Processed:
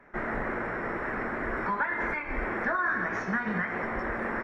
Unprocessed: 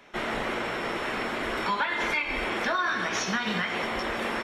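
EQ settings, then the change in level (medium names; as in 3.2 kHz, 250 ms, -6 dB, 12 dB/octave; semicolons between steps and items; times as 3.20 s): tilt EQ -2 dB/octave; resonant high shelf 2.4 kHz -10 dB, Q 3; -4.5 dB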